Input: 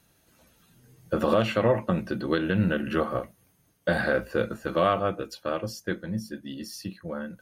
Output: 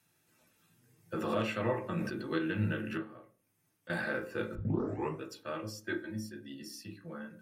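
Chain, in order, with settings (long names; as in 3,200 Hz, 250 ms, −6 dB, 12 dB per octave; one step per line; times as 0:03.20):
0:02.97–0:03.90: downward compressor 2 to 1, threshold −51 dBFS, peak gain reduction 16.5 dB
0:04.55: tape start 0.66 s
0:05.83–0:06.32: comb filter 3.2 ms, depth 92%
convolution reverb RT60 0.40 s, pre-delay 3 ms, DRR 4.5 dB
0:01.80–0:02.36: level that may fall only so fast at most 53 dB per second
level −8 dB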